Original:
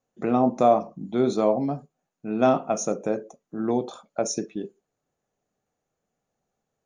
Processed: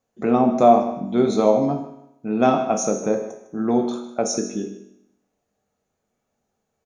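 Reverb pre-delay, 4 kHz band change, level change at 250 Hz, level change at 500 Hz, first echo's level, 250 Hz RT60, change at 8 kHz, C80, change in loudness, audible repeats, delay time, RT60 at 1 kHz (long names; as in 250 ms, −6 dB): 5 ms, +4.5 dB, +5.0 dB, +4.0 dB, −14.5 dB, 0.80 s, +5.0 dB, 9.0 dB, +4.5 dB, 2, 154 ms, 0.85 s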